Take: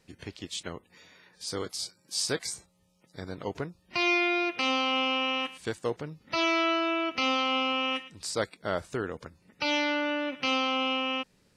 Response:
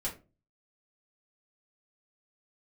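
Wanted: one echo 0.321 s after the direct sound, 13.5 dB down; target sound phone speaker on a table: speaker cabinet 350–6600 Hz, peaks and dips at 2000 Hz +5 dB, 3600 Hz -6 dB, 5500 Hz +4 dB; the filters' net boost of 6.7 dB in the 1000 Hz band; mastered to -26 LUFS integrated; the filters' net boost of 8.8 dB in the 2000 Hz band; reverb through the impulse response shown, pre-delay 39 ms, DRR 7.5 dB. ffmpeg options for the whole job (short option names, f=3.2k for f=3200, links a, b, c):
-filter_complex "[0:a]equalizer=f=1k:t=o:g=6,equalizer=f=2k:t=o:g=7.5,aecho=1:1:321:0.211,asplit=2[a][b];[1:a]atrim=start_sample=2205,adelay=39[c];[b][c]afir=irnorm=-1:irlink=0,volume=-10dB[d];[a][d]amix=inputs=2:normalize=0,highpass=f=350:w=0.5412,highpass=f=350:w=1.3066,equalizer=f=2k:t=q:w=4:g=5,equalizer=f=3.6k:t=q:w=4:g=-6,equalizer=f=5.5k:t=q:w=4:g=4,lowpass=f=6.6k:w=0.5412,lowpass=f=6.6k:w=1.3066,volume=-5dB"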